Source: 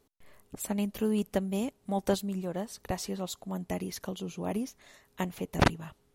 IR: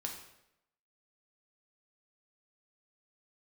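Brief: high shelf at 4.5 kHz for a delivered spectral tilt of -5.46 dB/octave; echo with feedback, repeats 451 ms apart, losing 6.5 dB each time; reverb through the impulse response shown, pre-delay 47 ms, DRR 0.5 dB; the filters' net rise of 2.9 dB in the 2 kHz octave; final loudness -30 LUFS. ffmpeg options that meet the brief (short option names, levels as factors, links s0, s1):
-filter_complex "[0:a]equalizer=f=2000:t=o:g=4.5,highshelf=f=4500:g=-5,aecho=1:1:451|902|1353|1804|2255|2706:0.473|0.222|0.105|0.0491|0.0231|0.0109,asplit=2[s0][s1];[1:a]atrim=start_sample=2205,adelay=47[s2];[s1][s2]afir=irnorm=-1:irlink=0,volume=1[s3];[s0][s3]amix=inputs=2:normalize=0,volume=0.841"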